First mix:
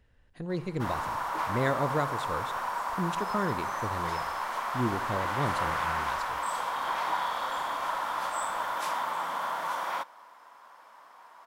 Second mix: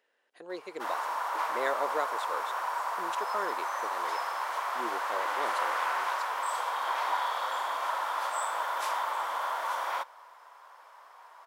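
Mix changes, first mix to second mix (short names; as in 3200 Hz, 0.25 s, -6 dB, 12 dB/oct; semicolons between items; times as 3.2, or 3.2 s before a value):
speech: send off; master: add HPF 400 Hz 24 dB/oct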